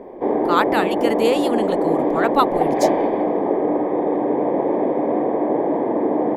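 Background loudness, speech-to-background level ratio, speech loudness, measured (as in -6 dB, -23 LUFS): -20.0 LUFS, -2.5 dB, -22.5 LUFS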